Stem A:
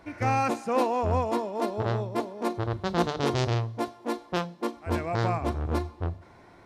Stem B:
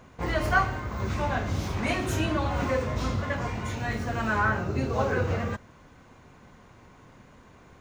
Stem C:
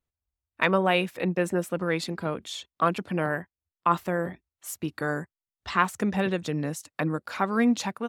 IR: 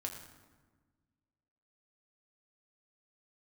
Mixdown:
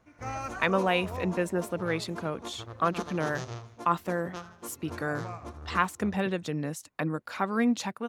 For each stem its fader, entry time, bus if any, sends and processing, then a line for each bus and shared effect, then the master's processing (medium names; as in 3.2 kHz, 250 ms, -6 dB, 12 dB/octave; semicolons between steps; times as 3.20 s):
-11.0 dB, 0.00 s, no send, echo send -13.5 dB, graphic EQ with 31 bands 1.25 kHz +7 dB, 6.3 kHz +11 dB, 10 kHz +6 dB; upward expansion 1.5:1, over -35 dBFS
-15.5 dB, 0.00 s, no send, no echo send, auto duck -14 dB, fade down 1.95 s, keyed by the third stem
-3.0 dB, 0.00 s, no send, no echo send, none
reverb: none
echo: feedback delay 80 ms, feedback 49%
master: none